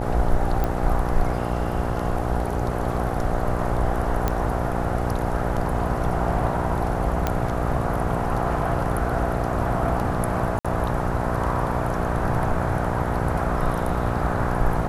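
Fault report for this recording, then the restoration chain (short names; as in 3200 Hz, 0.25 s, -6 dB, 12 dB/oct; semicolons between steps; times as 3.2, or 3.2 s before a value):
buzz 60 Hz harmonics 14 -27 dBFS
0.64 pop -12 dBFS
4.28 pop -9 dBFS
7.27 pop -8 dBFS
10.59–10.65 gap 56 ms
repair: de-click; de-hum 60 Hz, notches 14; interpolate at 10.59, 56 ms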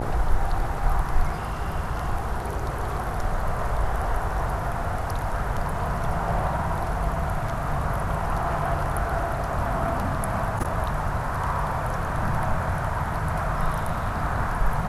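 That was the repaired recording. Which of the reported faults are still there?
none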